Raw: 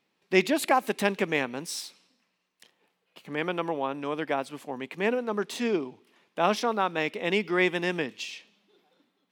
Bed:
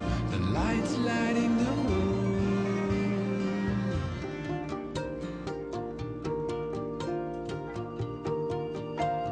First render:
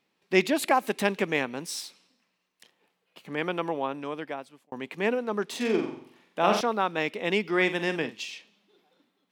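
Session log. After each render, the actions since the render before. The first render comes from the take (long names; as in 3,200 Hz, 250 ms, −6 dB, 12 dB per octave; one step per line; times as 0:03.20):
0:03.85–0:04.72: fade out
0:05.56–0:06.61: flutter between parallel walls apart 7.6 metres, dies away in 0.57 s
0:07.49–0:08.20: double-tracking delay 48 ms −11 dB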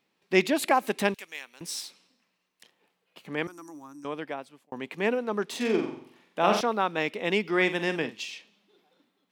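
0:01.14–0:01.61: first difference
0:03.47–0:04.05: drawn EQ curve 100 Hz 0 dB, 210 Hz −28 dB, 300 Hz −3 dB, 440 Hz −30 dB, 1,200 Hz −13 dB, 1,800 Hz −18 dB, 3,100 Hz −30 dB, 6,300 Hz +14 dB, 9,500 Hz +8 dB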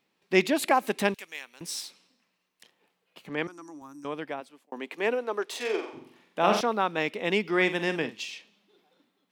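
0:03.29–0:03.82: band-pass filter 120–7,100 Hz
0:04.40–0:05.93: high-pass filter 180 Hz → 450 Hz 24 dB per octave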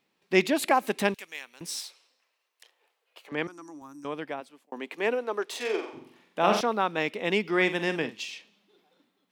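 0:01.79–0:03.32: high-pass filter 430 Hz 24 dB per octave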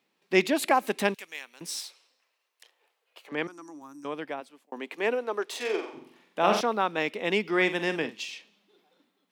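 high-pass filter 160 Hz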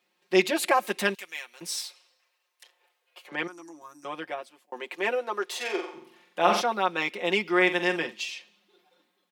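low-shelf EQ 240 Hz −11 dB
comb filter 5.6 ms, depth 89%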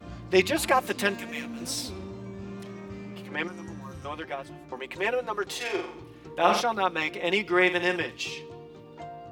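mix in bed −11.5 dB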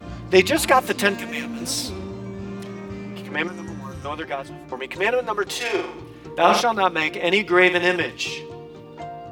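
level +6.5 dB
brickwall limiter −1 dBFS, peak gain reduction 1.5 dB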